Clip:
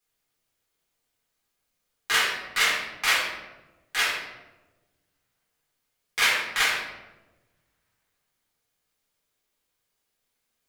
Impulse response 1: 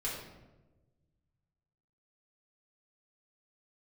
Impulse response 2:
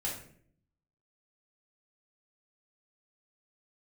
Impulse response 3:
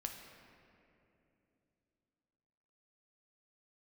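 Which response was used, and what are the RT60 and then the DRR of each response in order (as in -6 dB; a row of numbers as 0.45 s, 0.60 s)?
1; 1.1 s, 0.60 s, 2.9 s; -6.5 dB, -5.0 dB, 2.5 dB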